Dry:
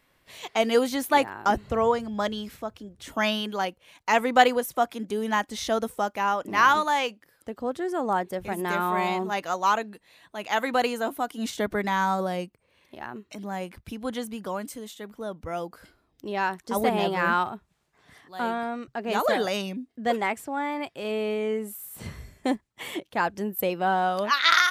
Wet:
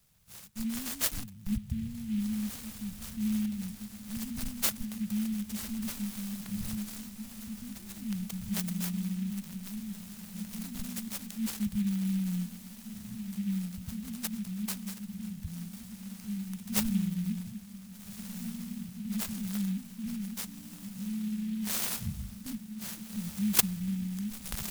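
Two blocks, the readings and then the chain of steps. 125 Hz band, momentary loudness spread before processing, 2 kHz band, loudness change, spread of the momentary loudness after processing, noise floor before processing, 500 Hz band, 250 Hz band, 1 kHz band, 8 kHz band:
+3.5 dB, 16 LU, −19.5 dB, −8.5 dB, 12 LU, −69 dBFS, −29.0 dB, −0.5 dB, −28.0 dB, +3.0 dB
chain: harmonic generator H 6 −29 dB, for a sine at −2.5 dBFS
in parallel at −10.5 dB: comparator with hysteresis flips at −12.5 dBFS
on the sum: Chebyshev band-stop filter 210–8,400 Hz, order 5
high-shelf EQ 8,400 Hz +10.5 dB
on a send: feedback delay with all-pass diffusion 1,598 ms, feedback 65%, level −11 dB
on the sum: short delay modulated by noise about 2,600 Hz, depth 0.034 ms
level +3.5 dB

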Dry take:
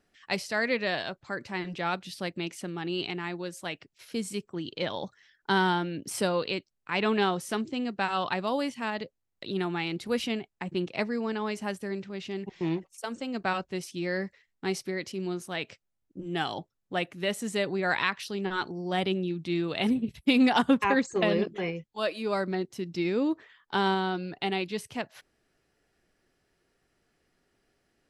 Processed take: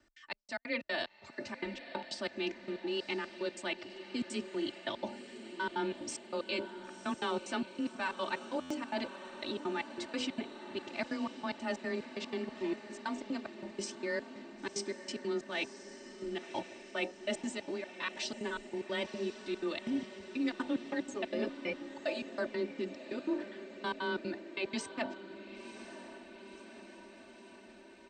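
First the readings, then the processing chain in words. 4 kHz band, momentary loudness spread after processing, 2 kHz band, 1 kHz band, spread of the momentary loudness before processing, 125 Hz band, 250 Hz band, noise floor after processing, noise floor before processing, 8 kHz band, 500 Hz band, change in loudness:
−7.0 dB, 12 LU, −7.5 dB, −10.0 dB, 11 LU, −16.0 dB, −8.5 dB, −55 dBFS, −79 dBFS, −4.5 dB, −7.0 dB, −8.0 dB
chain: Chebyshev low-pass filter 8,500 Hz, order 8
comb filter 3.4 ms, depth 97%
hum removal 47.63 Hz, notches 19
reversed playback
downward compressor, threshold −32 dBFS, peak gain reduction 17 dB
reversed playback
gate pattern "x.xx..x.x" 185 BPM −60 dB
frequency shifter +18 Hz
on a send: feedback delay with all-pass diffusion 1,028 ms, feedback 65%, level −12 dB
on the sum: buffer that repeats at 0:08.60, samples 512, times 8

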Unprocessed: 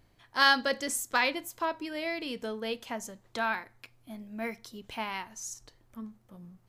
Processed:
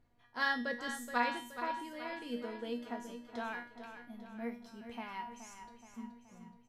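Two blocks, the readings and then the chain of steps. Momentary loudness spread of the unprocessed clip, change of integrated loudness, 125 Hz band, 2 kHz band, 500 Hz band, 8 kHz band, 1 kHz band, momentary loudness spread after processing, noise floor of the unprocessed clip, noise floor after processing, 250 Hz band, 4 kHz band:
21 LU, −8.5 dB, −7.5 dB, −8.0 dB, −7.5 dB, −15.5 dB, −6.5 dB, 17 LU, −65 dBFS, −66 dBFS, −3.5 dB, −13.5 dB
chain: high-shelf EQ 2,600 Hz −11.5 dB
tuned comb filter 240 Hz, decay 0.44 s, harmonics all, mix 90%
repeating echo 424 ms, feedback 52%, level −10 dB
level +8 dB

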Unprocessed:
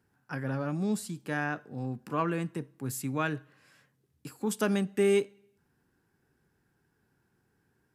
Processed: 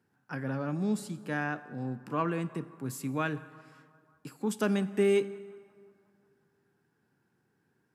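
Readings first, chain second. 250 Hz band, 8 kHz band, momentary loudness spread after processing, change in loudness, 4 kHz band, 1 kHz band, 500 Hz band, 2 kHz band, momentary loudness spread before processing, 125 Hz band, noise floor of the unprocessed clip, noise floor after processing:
0.0 dB, −4.5 dB, 15 LU, −0.5 dB, −2.0 dB, −1.0 dB, −0.5 dB, −1.0 dB, 13 LU, −1.0 dB, −74 dBFS, −75 dBFS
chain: Chebyshev high-pass filter 150 Hz, order 2
high-shelf EQ 6,900 Hz −6 dB
hard clipping −17 dBFS, distortion −41 dB
feedback echo with a band-pass in the loop 179 ms, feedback 71%, band-pass 1,000 Hz, level −22.5 dB
dense smooth reverb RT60 2.2 s, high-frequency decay 0.6×, DRR 16 dB

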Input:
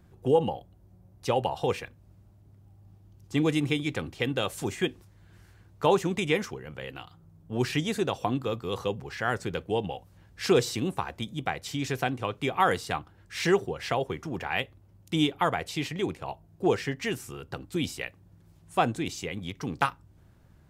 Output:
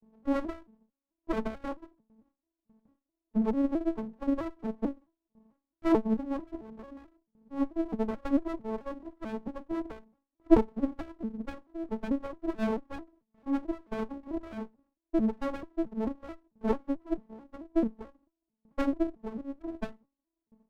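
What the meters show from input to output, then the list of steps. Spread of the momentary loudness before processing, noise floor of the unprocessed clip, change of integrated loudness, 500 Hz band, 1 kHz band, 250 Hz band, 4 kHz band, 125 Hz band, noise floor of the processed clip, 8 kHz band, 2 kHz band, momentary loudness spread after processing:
13 LU, −58 dBFS, −3.5 dB, −6.0 dB, −10.0 dB, +1.5 dB, below −20 dB, −13.5 dB, below −85 dBFS, below −20 dB, −15.0 dB, 17 LU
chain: vocoder with an arpeggio as carrier major triad, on A3, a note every 220 ms
linear-phase brick-wall low-pass 1,200 Hz
low-shelf EQ 130 Hz +5.5 dB
noise gate with hold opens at −54 dBFS
windowed peak hold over 33 samples
level −1.5 dB

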